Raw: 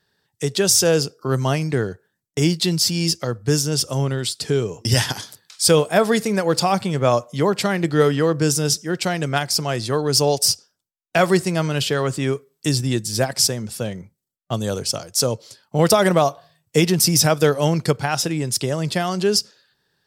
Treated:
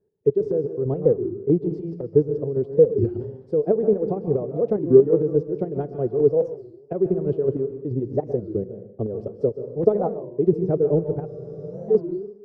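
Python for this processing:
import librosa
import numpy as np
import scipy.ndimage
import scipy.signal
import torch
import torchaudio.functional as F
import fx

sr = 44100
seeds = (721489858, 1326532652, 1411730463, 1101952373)

p1 = np.clip(10.0 ** (21.5 / 20.0) * x, -1.0, 1.0) / 10.0 ** (21.5 / 20.0)
p2 = x + (p1 * librosa.db_to_amplitude(-8.5))
p3 = fx.lowpass_res(p2, sr, hz=420.0, q=4.9)
p4 = fx.chopper(p3, sr, hz=2.9, depth_pct=60, duty_pct=40)
p5 = fx.stretch_vocoder(p4, sr, factor=0.62)
p6 = p5 + fx.echo_feedback(p5, sr, ms=144, feedback_pct=32, wet_db=-19.5, dry=0)
p7 = fx.rev_plate(p6, sr, seeds[0], rt60_s=0.71, hf_ratio=1.0, predelay_ms=120, drr_db=9.0)
p8 = fx.spec_freeze(p7, sr, seeds[1], at_s=11.29, hold_s=0.61)
p9 = fx.record_warp(p8, sr, rpm=33.33, depth_cents=250.0)
y = p9 * librosa.db_to_amplitude(-6.0)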